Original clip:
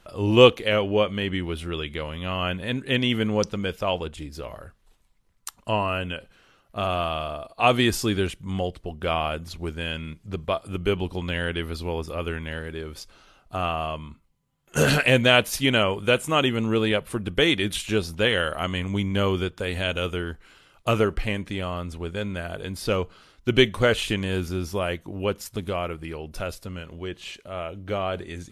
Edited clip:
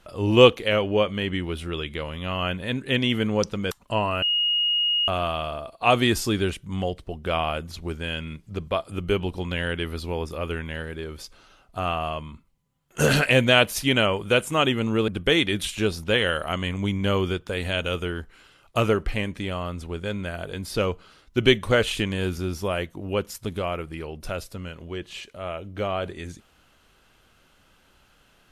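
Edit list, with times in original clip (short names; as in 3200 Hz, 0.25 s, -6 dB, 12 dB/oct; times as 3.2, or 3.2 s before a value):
3.71–5.48 cut
5.99–6.85 bleep 2870 Hz -19.5 dBFS
16.85–17.19 cut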